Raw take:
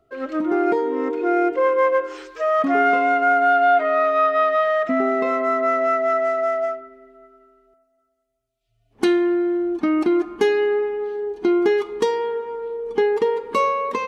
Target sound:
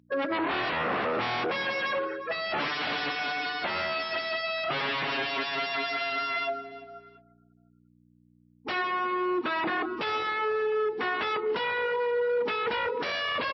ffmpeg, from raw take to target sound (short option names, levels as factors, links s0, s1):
-filter_complex "[0:a]aemphasis=mode=reproduction:type=50fm,afftfilt=real='re*gte(hypot(re,im),0.02)':imag='im*gte(hypot(re,im),0.02)':win_size=1024:overlap=0.75,equalizer=f=350:t=o:w=0.54:g=-5,asplit=2[s0][s1];[s1]alimiter=limit=0.126:level=0:latency=1:release=20,volume=0.891[s2];[s0][s2]amix=inputs=2:normalize=0,asetrate=45864,aresample=44100,aeval=exprs='0.075*(abs(mod(val(0)/0.075+3,4)-2)-1)':c=same,aeval=exprs='val(0)+0.00224*(sin(2*PI*60*n/s)+sin(2*PI*2*60*n/s)/2+sin(2*PI*3*60*n/s)/3+sin(2*PI*4*60*n/s)/4+sin(2*PI*5*60*n/s)/5)':c=same,highpass=170,lowpass=2800,aecho=1:1:350|700:0.1|0.027" -ar 16000 -c:a libmp3lame -b:a 24k